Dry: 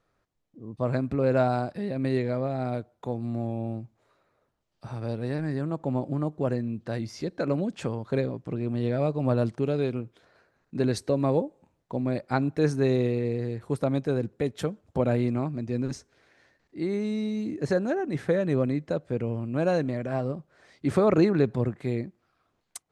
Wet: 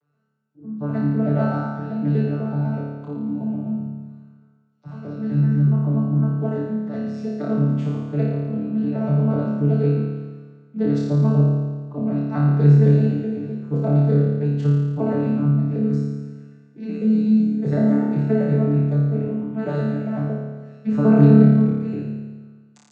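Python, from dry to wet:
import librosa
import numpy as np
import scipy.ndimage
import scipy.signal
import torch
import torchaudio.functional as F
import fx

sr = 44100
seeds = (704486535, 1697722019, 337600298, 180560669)

p1 = fx.vocoder_arp(x, sr, chord='bare fifth', root=50, every_ms=126)
p2 = p1 + fx.room_flutter(p1, sr, wall_m=4.8, rt60_s=1.4, dry=0)
y = p2 * 10.0 ** (2.0 / 20.0)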